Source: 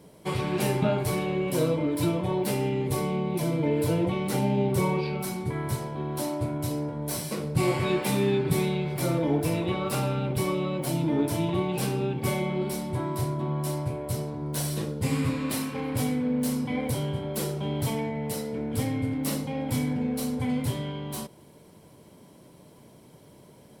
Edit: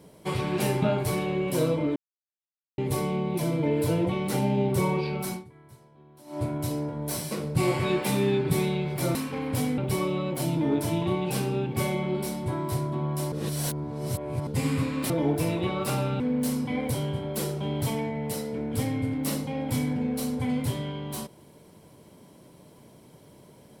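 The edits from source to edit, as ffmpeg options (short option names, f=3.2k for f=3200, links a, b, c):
-filter_complex "[0:a]asplit=11[a][b][c][d][e][f][g][h][i][j][k];[a]atrim=end=1.96,asetpts=PTS-STARTPTS,afade=t=out:st=1.956:d=0.004:c=hsin[l];[b]atrim=start=1.96:end=2.78,asetpts=PTS-STARTPTS,volume=0[m];[c]atrim=start=2.78:end=5.5,asetpts=PTS-STARTPTS,afade=t=in:d=0.004:c=hsin,afade=t=out:st=2.56:d=0.16:c=qua:silence=0.0794328[n];[d]atrim=start=5.5:end=6.23,asetpts=PTS-STARTPTS,volume=-22dB[o];[e]atrim=start=6.23:end=9.152,asetpts=PTS-STARTPTS,afade=t=in:d=0.16:c=qua:silence=0.0794328[p];[f]atrim=start=15.568:end=16.202[q];[g]atrim=start=10.248:end=13.792[r];[h]atrim=start=13.788:end=14.942,asetpts=PTS-STARTPTS,areverse[s];[i]atrim=start=14.938:end=15.572[t];[j]atrim=start=9.148:end=10.252[u];[k]atrim=start=16.198[v];[l][m][n][o][p]concat=n=5:v=0:a=1[w];[w][q]acrossfade=d=0.004:c1=hsin:c2=hsin[x];[x][r]acrossfade=d=0.004:c1=hsin:c2=hsin[y];[y][s]acrossfade=d=0.004:c1=hsin:c2=hsin[z];[z][t]acrossfade=d=0.004:c1=hsin:c2=hsin[aa];[aa][u]acrossfade=d=0.004:c1=hsin:c2=hsin[ab];[ab][v]acrossfade=d=0.004:c1=hsin:c2=hsin"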